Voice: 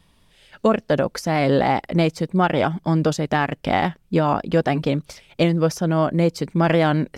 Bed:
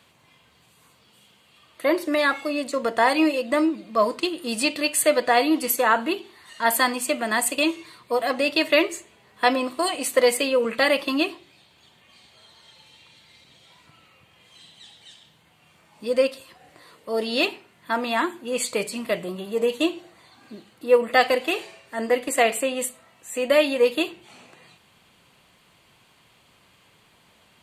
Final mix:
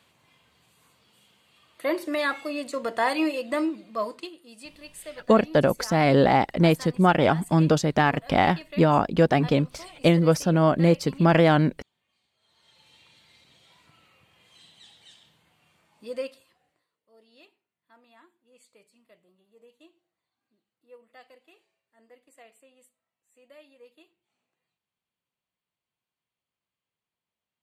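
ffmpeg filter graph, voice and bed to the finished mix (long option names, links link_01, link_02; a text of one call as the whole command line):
ffmpeg -i stem1.wav -i stem2.wav -filter_complex "[0:a]adelay=4650,volume=-0.5dB[link_01];[1:a]volume=11.5dB,afade=type=out:start_time=3.71:duration=0.75:silence=0.149624,afade=type=in:start_time=12.39:duration=0.57:silence=0.149624,afade=type=out:start_time=15.26:duration=1.62:silence=0.0375837[link_02];[link_01][link_02]amix=inputs=2:normalize=0" out.wav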